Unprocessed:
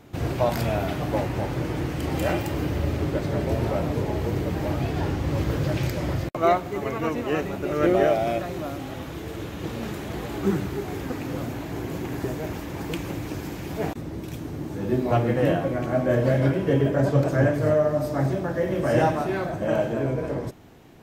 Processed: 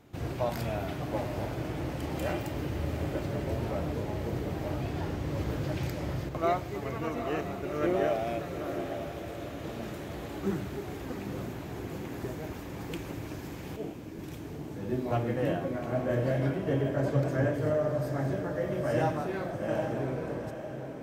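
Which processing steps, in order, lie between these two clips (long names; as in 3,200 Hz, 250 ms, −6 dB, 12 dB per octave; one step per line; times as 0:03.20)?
0:13.76–0:14.19: flat-topped band-pass 320 Hz, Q 0.83
feedback delay with all-pass diffusion 825 ms, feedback 45%, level −8 dB
level −8 dB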